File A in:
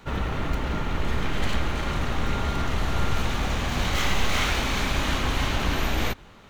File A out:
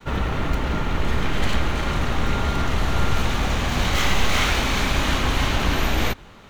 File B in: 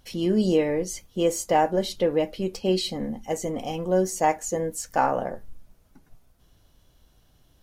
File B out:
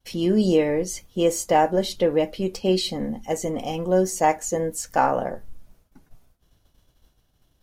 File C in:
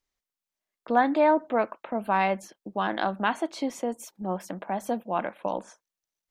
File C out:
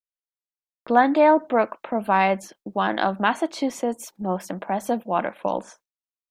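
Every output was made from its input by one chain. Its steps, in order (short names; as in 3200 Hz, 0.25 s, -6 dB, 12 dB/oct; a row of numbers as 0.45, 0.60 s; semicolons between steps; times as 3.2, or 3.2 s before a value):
expander -52 dBFS; match loudness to -23 LUFS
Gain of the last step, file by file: +4.0, +2.5, +5.0 dB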